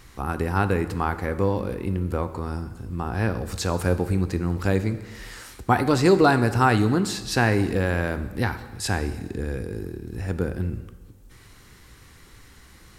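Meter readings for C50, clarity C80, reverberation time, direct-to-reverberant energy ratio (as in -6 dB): 13.0 dB, 14.5 dB, 1.3 s, 10.5 dB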